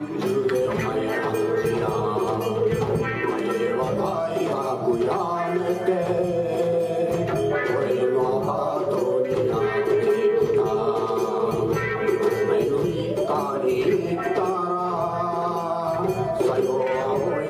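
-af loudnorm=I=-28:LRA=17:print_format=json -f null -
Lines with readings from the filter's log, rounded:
"input_i" : "-23.4",
"input_tp" : "-10.9",
"input_lra" : "1.8",
"input_thresh" : "-33.4",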